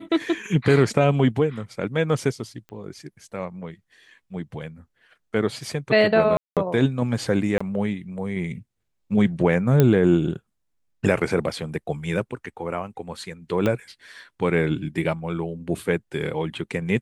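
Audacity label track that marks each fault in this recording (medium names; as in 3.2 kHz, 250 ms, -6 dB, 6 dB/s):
2.690000	2.690000	pop -28 dBFS
6.370000	6.570000	dropout 197 ms
7.580000	7.610000	dropout 25 ms
9.800000	9.800000	pop -5 dBFS
13.660000	13.660000	pop -11 dBFS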